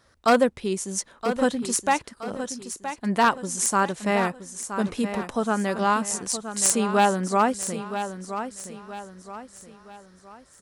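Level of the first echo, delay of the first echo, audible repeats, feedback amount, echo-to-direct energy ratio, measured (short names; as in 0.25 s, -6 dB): -10.0 dB, 0.971 s, 4, 39%, -9.5 dB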